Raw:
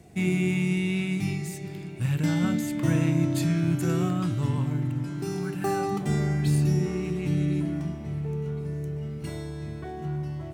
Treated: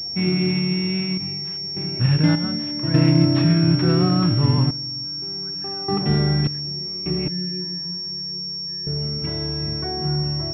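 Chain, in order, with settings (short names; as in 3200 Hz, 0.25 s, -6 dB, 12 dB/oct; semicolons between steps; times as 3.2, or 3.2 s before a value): random-step tremolo 1.7 Hz, depth 90%; 7.28–8.87 metallic resonator 180 Hz, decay 0.39 s, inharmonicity 0.008; pulse-width modulation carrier 5500 Hz; gain +8.5 dB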